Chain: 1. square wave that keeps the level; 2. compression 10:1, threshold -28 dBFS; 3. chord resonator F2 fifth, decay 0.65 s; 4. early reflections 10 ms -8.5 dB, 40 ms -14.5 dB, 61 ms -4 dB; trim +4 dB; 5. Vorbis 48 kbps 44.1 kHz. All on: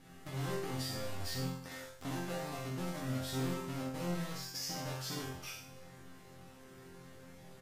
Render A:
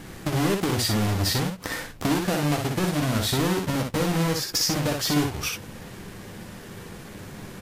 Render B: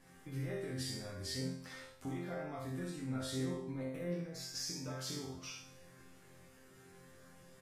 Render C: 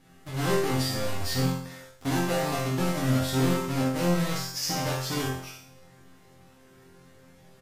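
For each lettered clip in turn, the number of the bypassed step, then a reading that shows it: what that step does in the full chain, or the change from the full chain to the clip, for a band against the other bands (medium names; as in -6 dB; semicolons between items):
3, loudness change +15.0 LU; 1, distortion -5 dB; 2, mean gain reduction 7.0 dB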